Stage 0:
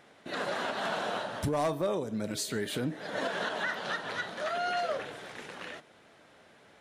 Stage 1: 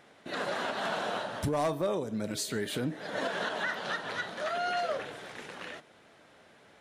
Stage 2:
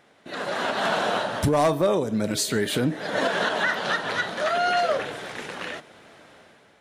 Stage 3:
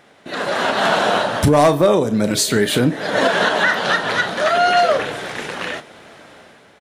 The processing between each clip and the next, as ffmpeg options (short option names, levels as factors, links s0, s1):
-af anull
-af "dynaudnorm=f=220:g=5:m=2.82"
-filter_complex "[0:a]asplit=2[s0][s1];[s1]adelay=34,volume=0.211[s2];[s0][s2]amix=inputs=2:normalize=0,volume=2.37"